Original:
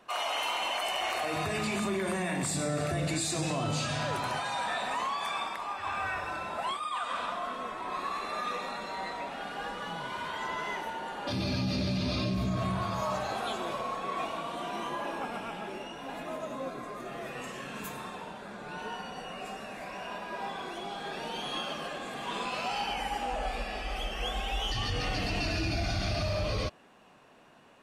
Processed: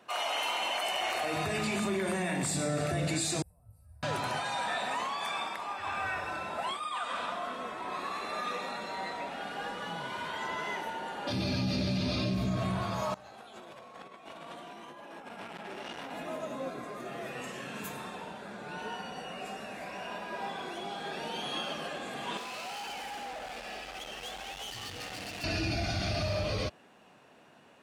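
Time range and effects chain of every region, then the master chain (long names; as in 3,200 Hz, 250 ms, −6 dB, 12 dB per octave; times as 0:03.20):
0:03.42–0:04.03: inverse Chebyshev band-stop filter 130–7,200 Hz + tilt shelving filter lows +7.5 dB
0:13.14–0:16.11: compressor whose output falls as the input rises −41 dBFS, ratio −0.5 + saturating transformer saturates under 2,100 Hz
0:22.37–0:25.44: hard clipping −37.5 dBFS + low-shelf EQ 190 Hz −8.5 dB
whole clip: high-pass filter 69 Hz; parametric band 1,100 Hz −4 dB 0.24 octaves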